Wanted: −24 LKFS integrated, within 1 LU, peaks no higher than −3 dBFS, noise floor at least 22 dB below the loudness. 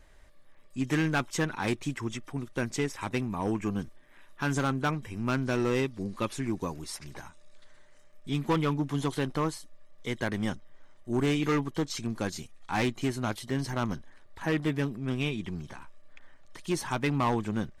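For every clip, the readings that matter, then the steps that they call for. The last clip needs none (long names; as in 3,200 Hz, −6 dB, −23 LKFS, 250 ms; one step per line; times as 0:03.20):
share of clipped samples 1.6%; peaks flattened at −21.5 dBFS; number of dropouts 1; longest dropout 3.7 ms; integrated loudness −31.5 LKFS; sample peak −21.5 dBFS; target loudness −24.0 LKFS
→ clipped peaks rebuilt −21.5 dBFS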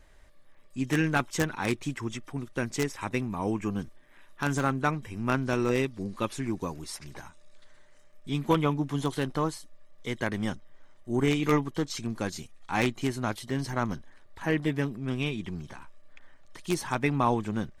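share of clipped samples 0.0%; number of dropouts 1; longest dropout 3.7 ms
→ repair the gap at 0:13.50, 3.7 ms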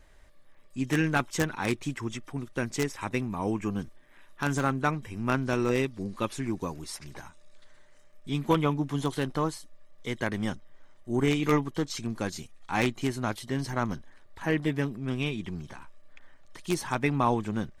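number of dropouts 0; integrated loudness −30.0 LKFS; sample peak −12.5 dBFS; target loudness −24.0 LKFS
→ level +6 dB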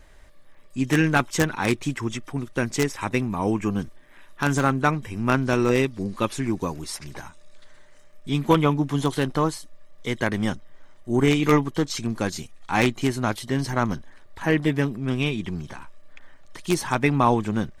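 integrated loudness −24.0 LKFS; sample peak −6.5 dBFS; background noise floor −49 dBFS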